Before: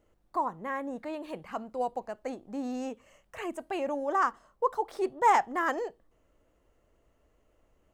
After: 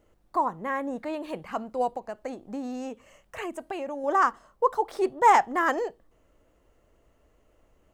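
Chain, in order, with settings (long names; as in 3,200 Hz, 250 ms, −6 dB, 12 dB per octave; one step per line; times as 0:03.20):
0:01.90–0:04.04: downward compressor, threshold −35 dBFS, peak gain reduction 7.5 dB
level +4.5 dB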